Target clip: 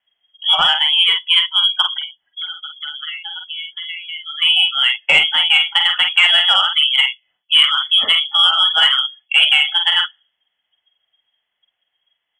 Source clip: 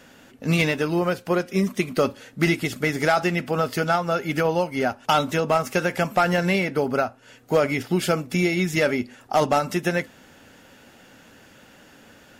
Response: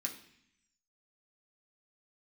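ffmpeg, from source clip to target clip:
-filter_complex "[0:a]asettb=1/sr,asplit=3[s0][s1][s2];[s0]atrim=end=1.984[s3];[s1]atrim=start=1.98:end=4.42,asetpts=PTS-STARTPTS,afade=t=in:d=0.004:c=qsin,afade=t=out:st=2.436:d=0.004:c=qsin,acompressor=threshold=0.0224:ratio=8[s4];[s2]atrim=start=4.416[s5];[s3][s4]acrossfade=d=0.004:c1=hsin:c2=qsin[s6];[s6][s5]acrossfade=d=0.004:c1=qsin:c2=hsin,lowpass=f=3000:t=q:w=0.5098,lowpass=f=3000:t=q:w=0.6013,lowpass=f=3000:t=q:w=0.9,lowpass=f=3000:t=q:w=2.563,afreqshift=-3500,afftdn=nr=33:nf=-33,asplit=2[s7][s8];[s8]adelay=47,volume=0.562[s9];[s7][s9]amix=inputs=2:normalize=0,acontrast=46,volume=1.19"

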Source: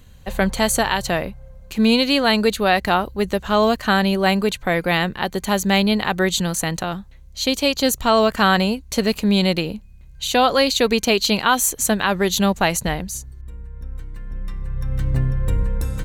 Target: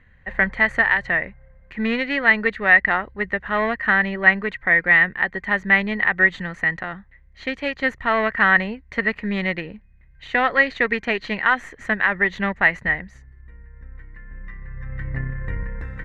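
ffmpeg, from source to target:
-af "aeval=exprs='0.596*(cos(1*acos(clip(val(0)/0.596,-1,1)))-cos(1*PI/2))+0.0596*(cos(3*acos(clip(val(0)/0.596,-1,1)))-cos(3*PI/2))+0.0168*(cos(6*acos(clip(val(0)/0.596,-1,1)))-cos(6*PI/2))':c=same,lowpass=f=1900:t=q:w=11,volume=0.531"

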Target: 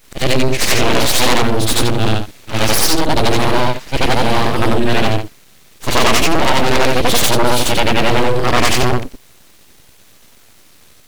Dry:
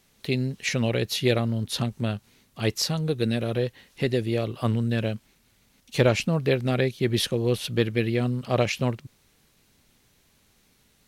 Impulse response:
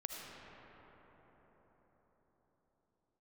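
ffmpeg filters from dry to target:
-af "afftfilt=real='re':imag='-im':win_size=8192:overlap=0.75,aeval=exprs='abs(val(0))':c=same,apsyclip=22.4,volume=0.596"

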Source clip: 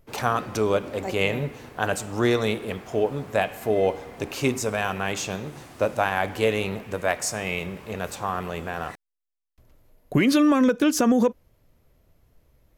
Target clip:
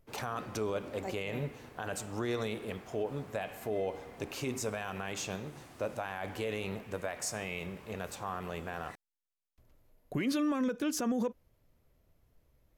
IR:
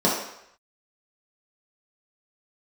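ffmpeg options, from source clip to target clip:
-af "alimiter=limit=0.15:level=0:latency=1:release=52,volume=0.398"

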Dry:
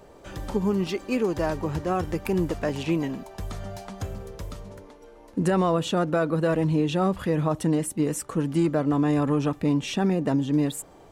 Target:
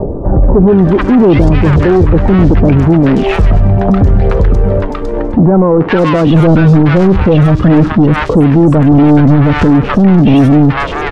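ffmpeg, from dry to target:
-filter_complex "[0:a]asettb=1/sr,asplit=3[s0][s1][s2];[s0]atrim=end=5.384[s3];[s1]atrim=start=5.38:end=6.27,asetpts=PTS-STARTPTS,afade=t=in:d=0.004:c=qsin,afade=t=out:st=0.886:d=0.004:c=qsin,highpass=210[s4];[s2]atrim=start=6.266[s5];[s3][s4]acrossfade=d=0.004:c1=hsin:c2=qsin[s6];[s6][s5]acrossfade=d=0.004:c1=qsin:c2=hsin,acrossover=split=430|1300[s7][s8][s9];[s7]aeval=exprs='0.178*(cos(1*acos(clip(val(0)/0.178,-1,1)))-cos(1*PI/2))+0.00891*(cos(5*acos(clip(val(0)/0.178,-1,1)))-cos(5*PI/2))':c=same[s10];[s8]acompressor=threshold=0.00891:ratio=6[s11];[s9]asoftclip=type=hard:threshold=0.0299[s12];[s10][s11][s12]amix=inputs=3:normalize=0,aphaser=in_gain=1:out_gain=1:delay=2.6:decay=0.47:speed=0.77:type=triangular,asoftclip=type=tanh:threshold=0.0501,adynamicsmooth=sensitivity=2.5:basefreq=900,acrossover=split=980|4500[s13][s14][s15];[s14]adelay=430[s16];[s15]adelay=530[s17];[s13][s16][s17]amix=inputs=3:normalize=0,alimiter=level_in=39.8:limit=0.891:release=50:level=0:latency=1,volume=0.891"

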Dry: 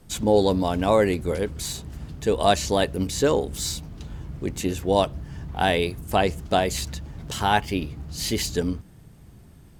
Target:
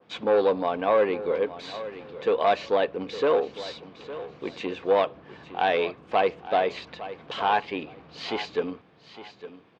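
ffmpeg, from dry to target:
-af "asoftclip=type=tanh:threshold=0.158,highpass=290,equalizer=f=490:t=q:w=4:g=8,equalizer=f=740:t=q:w=4:g=4,equalizer=f=1100:t=q:w=4:g=8,equalizer=f=1600:t=q:w=4:g=3,equalizer=f=2400:t=q:w=4:g=7,equalizer=f=3400:t=q:w=4:g=3,lowpass=f=4000:w=0.5412,lowpass=f=4000:w=1.3066,aecho=1:1:859|1718:0.188|0.0433,adynamicequalizer=threshold=0.0141:dfrequency=2000:dqfactor=0.7:tfrequency=2000:tqfactor=0.7:attack=5:release=100:ratio=0.375:range=3:mode=cutabove:tftype=highshelf,volume=0.708"

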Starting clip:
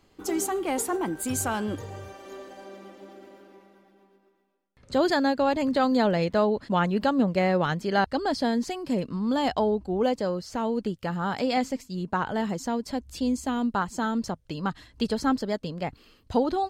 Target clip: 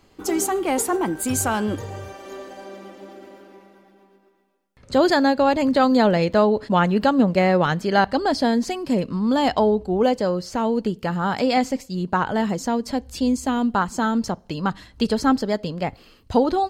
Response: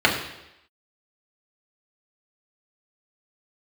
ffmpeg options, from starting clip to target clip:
-filter_complex "[0:a]asplit=2[s0][s1];[1:a]atrim=start_sample=2205,asetrate=66150,aresample=44100[s2];[s1][s2]afir=irnorm=-1:irlink=0,volume=0.0141[s3];[s0][s3]amix=inputs=2:normalize=0,volume=1.88"

